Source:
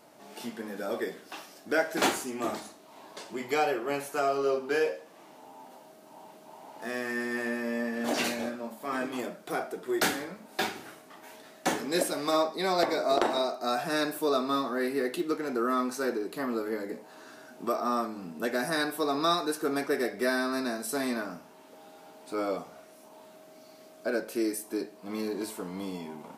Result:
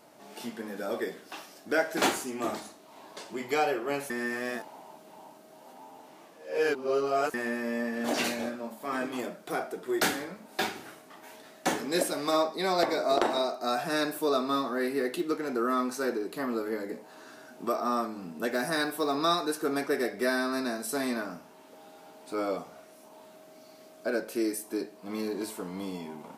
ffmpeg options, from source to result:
ffmpeg -i in.wav -filter_complex "[0:a]asettb=1/sr,asplit=3[link_01][link_02][link_03];[link_01]atrim=end=18.504[link_04];[link_02]atrim=start=18.5:end=19.15,asetpts=PTS-STARTPTS,afade=type=in:duration=0.004:curve=qsin,afade=type=out:start_time=0.646:duration=0.004:curve=qsin,acrusher=bits=9:mode=log:mix=0:aa=0.000001[link_05];[link_03]atrim=start=19.146[link_06];[link_04][link_05]acrossfade=duration=0.004:curve1=hsin:curve2=qsin[link_07];[link_07][link_06]acrossfade=duration=0.004:curve1=qsin:curve2=hsin,asplit=3[link_08][link_09][link_10];[link_08]atrim=end=4.102[link_11];[link_09]atrim=start=4.098:end=7.342,asetpts=PTS-STARTPTS,areverse[link_12];[link_10]atrim=start=7.338[link_13];[link_11][link_12]acrossfade=duration=0.004:curve1=hsin:curve2=hsin[link_14];[link_14][link_13]acrossfade=duration=0.004:curve1=hsin:curve2=hsin" out.wav

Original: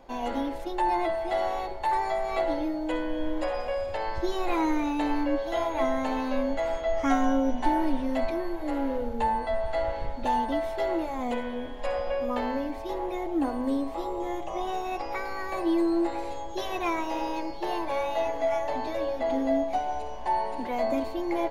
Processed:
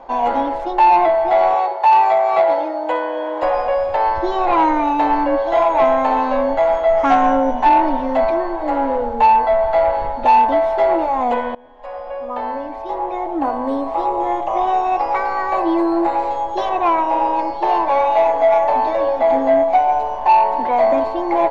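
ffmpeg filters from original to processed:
ffmpeg -i in.wav -filter_complex "[0:a]asettb=1/sr,asplit=3[link_01][link_02][link_03];[link_01]atrim=end=1.544[link_04];[link_02]atrim=start=1.54:end=3.43,asetpts=PTS-STARTPTS,afade=type=in:duration=0.004:curve=qsin,afade=type=out:start_time=1.886:duration=0.004:curve=qsin,highpass=frequency=370:width=0.5412,highpass=frequency=370:width=1.3066[link_05];[link_03]atrim=start=3.426[link_06];[link_04][link_05]acrossfade=duration=0.004:curve1=hsin:curve2=qsin[link_07];[link_07][link_06]acrossfade=duration=0.004:curve1=qsin:curve2=hsin,asettb=1/sr,asplit=3[link_08][link_09][link_10];[link_08]atrim=end=4.124[link_11];[link_09]atrim=start=4.12:end=4.88,asetpts=PTS-STARTPTS,afade=type=in:duration=0.004:curve=qsin,afade=type=out:start_time=0.756:duration=0.004:curve=qsin,lowpass=6700[link_12];[link_10]atrim=start=4.876[link_13];[link_11][link_12]acrossfade=duration=0.004:curve1=hsin:curve2=qsin[link_14];[link_14][link_13]acrossfade=duration=0.004:curve1=qsin:curve2=hsin,asettb=1/sr,asplit=3[link_15][link_16][link_17];[link_15]atrim=end=16.694[link_18];[link_16]atrim=start=16.69:end=17.39,asetpts=PTS-STARTPTS,afade=type=in:duration=0.004:curve=qsin,afade=type=out:start_time=0.696:duration=0.004:curve=qsin,highshelf=frequency=3400:gain=-10[link_19];[link_17]atrim=start=17.386[link_20];[link_18][link_19]acrossfade=duration=0.004:curve1=hsin:curve2=qsin[link_21];[link_21][link_20]acrossfade=duration=0.004:curve1=qsin:curve2=hsin,asplit=2[link_22][link_23];[link_22]atrim=end=11.55,asetpts=PTS-STARTPTS,afade=type=out:start_time=11.546:duration=0.004:curve=hsin:silence=0.0749894[link_24];[link_23]atrim=start=11.55,asetpts=PTS-STARTPTS,afade=type=in:duration=2.59:silence=0.0749894[link_25];[link_24][link_25]concat=n=2:v=0:a=1,lowpass=5800,equalizer=frequency=880:width_type=o:width=1.8:gain=15,acontrast=74,volume=-4dB" out.wav

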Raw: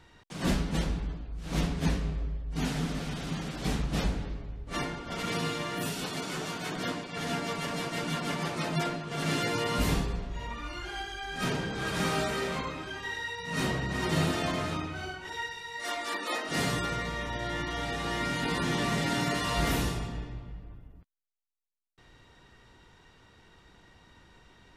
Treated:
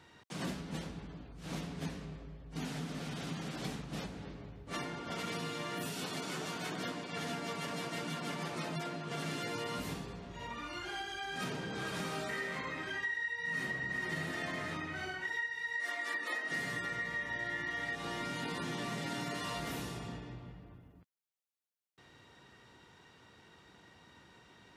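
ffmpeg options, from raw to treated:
ffmpeg -i in.wav -filter_complex "[0:a]asettb=1/sr,asplit=3[link_01][link_02][link_03];[link_01]atrim=end=12.294[link_04];[link_02]atrim=start=12.29:end=17.95,asetpts=PTS-STARTPTS,afade=type=in:duration=0.004:curve=qsin,afade=type=out:start_time=5.656:duration=0.004:curve=qsin,equalizer=frequency=1900:width_type=o:width=0.26:gain=14[link_05];[link_03]atrim=start=17.946[link_06];[link_04][link_05]acrossfade=duration=0.004:curve1=hsin:curve2=qsin[link_07];[link_07][link_06]acrossfade=duration=0.004:curve1=qsin:curve2=hsin,acompressor=threshold=-35dB:ratio=5,highpass=110,volume=-1dB" out.wav

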